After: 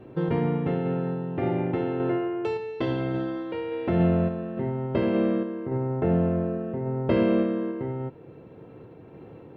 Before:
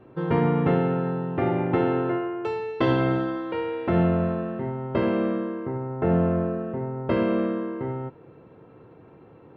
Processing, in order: peaking EQ 1.2 kHz -6.5 dB 1.1 oct; in parallel at 0 dB: compression, threshold -32 dBFS, peak gain reduction 13.5 dB; on the sum: random-step tremolo

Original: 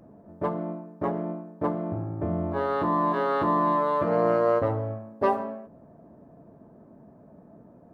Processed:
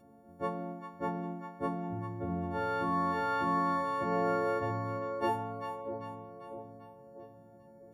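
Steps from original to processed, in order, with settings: partials quantised in pitch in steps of 4 st; two-band feedback delay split 700 Hz, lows 646 ms, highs 395 ms, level -8 dB; trim -7.5 dB

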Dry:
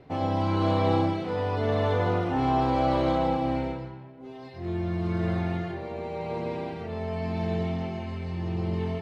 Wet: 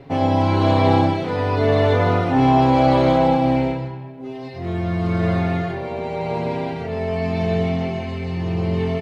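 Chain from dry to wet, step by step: comb 7.3 ms, depth 49%; trim +8 dB

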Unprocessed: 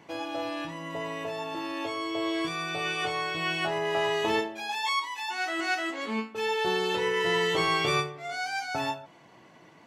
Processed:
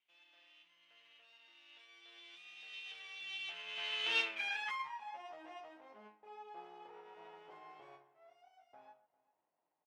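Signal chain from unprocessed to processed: comb filter that takes the minimum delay 0.34 ms; Doppler pass-by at 4.33 s, 15 m/s, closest 2.4 m; band-pass sweep 2.9 kHz -> 830 Hz, 4.20–5.10 s; echo from a far wall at 68 m, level -21 dB; trim +7 dB

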